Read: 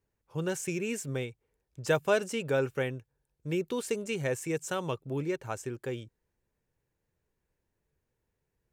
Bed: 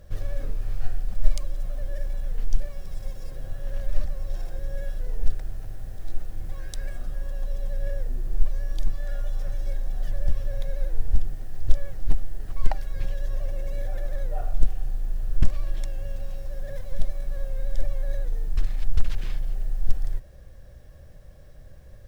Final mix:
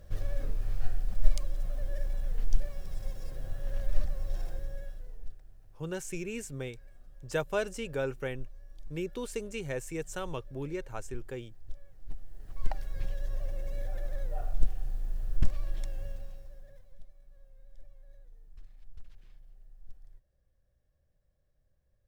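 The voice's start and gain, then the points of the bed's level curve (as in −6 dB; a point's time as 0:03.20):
5.45 s, −4.5 dB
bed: 0:04.50 −3.5 dB
0:05.41 −22 dB
0:11.90 −22 dB
0:12.81 −6 dB
0:16.04 −6 dB
0:17.05 −27 dB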